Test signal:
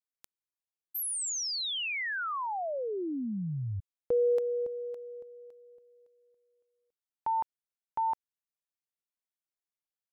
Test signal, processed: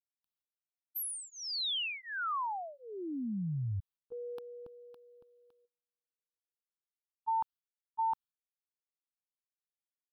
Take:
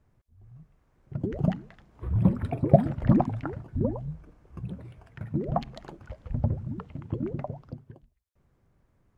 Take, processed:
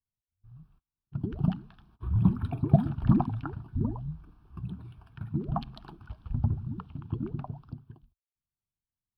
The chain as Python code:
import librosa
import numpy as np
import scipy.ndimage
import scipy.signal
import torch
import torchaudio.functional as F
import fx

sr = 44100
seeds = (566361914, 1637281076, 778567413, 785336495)

y = fx.gate_hold(x, sr, open_db=-46.0, close_db=-47.0, hold_ms=145.0, range_db=-30, attack_ms=17.0, release_ms=39.0)
y = fx.fixed_phaser(y, sr, hz=2000.0, stages=6)